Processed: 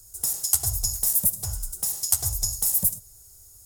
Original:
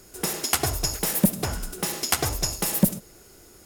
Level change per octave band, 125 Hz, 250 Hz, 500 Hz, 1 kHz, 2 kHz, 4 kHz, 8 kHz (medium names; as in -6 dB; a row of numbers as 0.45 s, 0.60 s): -5.5 dB, -19.0 dB, -18.0 dB, -14.5 dB, under -15 dB, -5.5 dB, +4.0 dB